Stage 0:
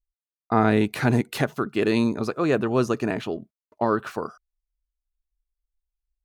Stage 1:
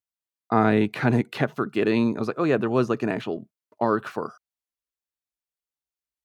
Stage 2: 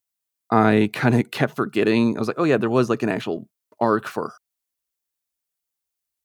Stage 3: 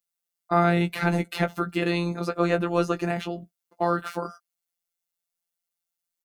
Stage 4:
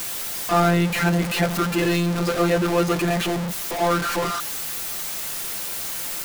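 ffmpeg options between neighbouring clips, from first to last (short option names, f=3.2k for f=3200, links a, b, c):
-filter_complex "[0:a]highpass=f=100:w=0.5412,highpass=f=100:w=1.3066,acrossover=split=4000[a][b];[b]acompressor=threshold=-53dB:ratio=6[c];[a][c]amix=inputs=2:normalize=0"
-af "highshelf=f=5.9k:g=9,volume=3dB"
-filter_complex "[0:a]afftfilt=real='hypot(re,im)*cos(PI*b)':imag='0':win_size=1024:overlap=0.75,asplit=2[a][b];[b]adelay=16,volume=-8.5dB[c];[a][c]amix=inputs=2:normalize=0"
-af "aeval=exprs='val(0)+0.5*0.0944*sgn(val(0))':c=same"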